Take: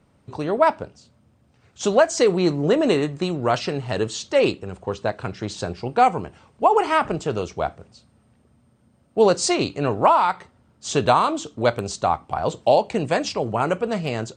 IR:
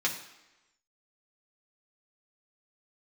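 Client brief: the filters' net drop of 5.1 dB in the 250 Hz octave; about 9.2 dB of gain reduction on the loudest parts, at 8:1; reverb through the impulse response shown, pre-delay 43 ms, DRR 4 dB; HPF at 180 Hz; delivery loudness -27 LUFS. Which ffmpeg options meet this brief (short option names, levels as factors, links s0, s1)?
-filter_complex "[0:a]highpass=180,equalizer=f=250:t=o:g=-6,acompressor=threshold=0.0891:ratio=8,asplit=2[s0][s1];[1:a]atrim=start_sample=2205,adelay=43[s2];[s1][s2]afir=irnorm=-1:irlink=0,volume=0.251[s3];[s0][s3]amix=inputs=2:normalize=0"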